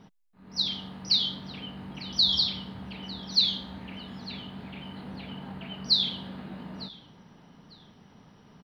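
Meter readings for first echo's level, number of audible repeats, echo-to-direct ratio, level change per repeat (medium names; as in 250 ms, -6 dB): -20.0 dB, 2, -20.0 dB, -13.0 dB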